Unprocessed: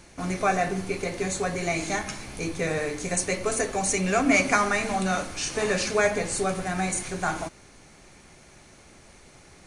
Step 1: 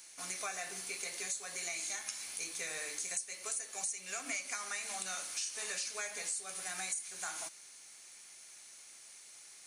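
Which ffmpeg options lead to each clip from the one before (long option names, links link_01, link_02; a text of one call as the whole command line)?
ffmpeg -i in.wav -af "aderivative,acompressor=threshold=-40dB:ratio=8,volume=4dB" out.wav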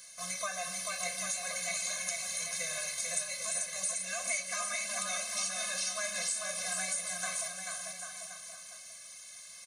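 ffmpeg -i in.wav -filter_complex "[0:a]asplit=2[link_01][link_02];[link_02]aecho=0:1:440|792|1074|1299|1479:0.631|0.398|0.251|0.158|0.1[link_03];[link_01][link_03]amix=inputs=2:normalize=0,afftfilt=real='re*eq(mod(floor(b*sr/1024/250),2),0)':imag='im*eq(mod(floor(b*sr/1024/250),2),0)':win_size=1024:overlap=0.75,volume=6.5dB" out.wav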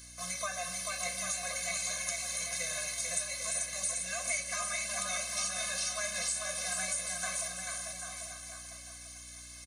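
ffmpeg -i in.wav -af "aeval=exprs='val(0)+0.00178*(sin(2*PI*60*n/s)+sin(2*PI*2*60*n/s)/2+sin(2*PI*3*60*n/s)/3+sin(2*PI*4*60*n/s)/4+sin(2*PI*5*60*n/s)/5)':channel_layout=same,aecho=1:1:847:0.251" out.wav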